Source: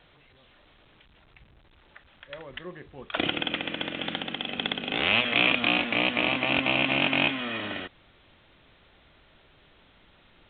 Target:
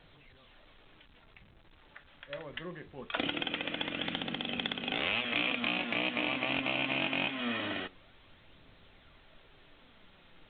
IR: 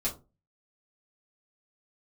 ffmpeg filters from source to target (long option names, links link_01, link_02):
-filter_complex "[0:a]acompressor=threshold=-29dB:ratio=2.5,flanger=delay=0.2:depth=6.8:regen=73:speed=0.23:shape=sinusoidal,asplit=2[link_01][link_02];[1:a]atrim=start_sample=2205[link_03];[link_02][link_03]afir=irnorm=-1:irlink=0,volume=-19dB[link_04];[link_01][link_04]amix=inputs=2:normalize=0,volume=2dB"